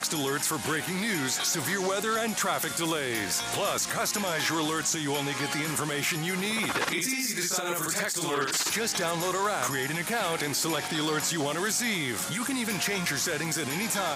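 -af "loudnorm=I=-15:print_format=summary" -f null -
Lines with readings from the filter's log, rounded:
Input Integrated:    -27.6 LUFS
Input True Peak:     -14.6 dBTP
Input LRA:             0.5 LU
Input Threshold:     -37.6 LUFS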